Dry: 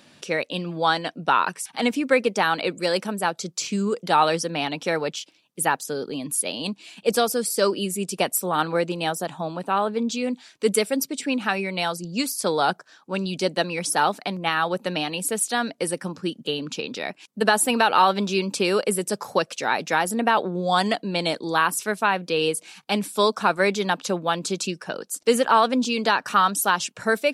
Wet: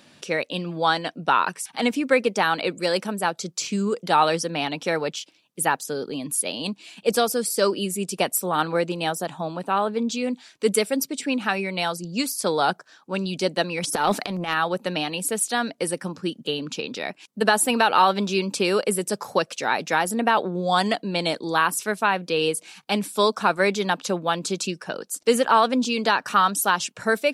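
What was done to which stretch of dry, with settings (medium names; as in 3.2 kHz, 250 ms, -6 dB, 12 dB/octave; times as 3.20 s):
13.82–14.54 s: transient shaper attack -11 dB, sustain +12 dB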